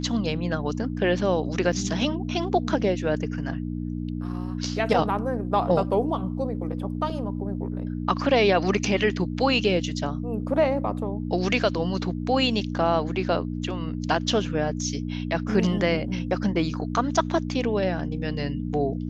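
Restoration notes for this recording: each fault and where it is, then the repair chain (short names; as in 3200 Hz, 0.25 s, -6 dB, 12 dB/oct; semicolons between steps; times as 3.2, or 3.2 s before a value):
hum 60 Hz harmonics 5 -30 dBFS
1.72–1.73 gap 5.1 ms
7.1 gap 2.6 ms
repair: de-hum 60 Hz, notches 5; interpolate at 1.72, 5.1 ms; interpolate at 7.1, 2.6 ms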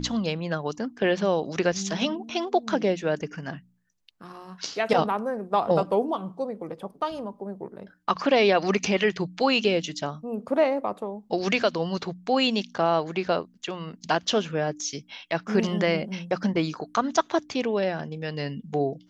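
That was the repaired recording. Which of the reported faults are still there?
none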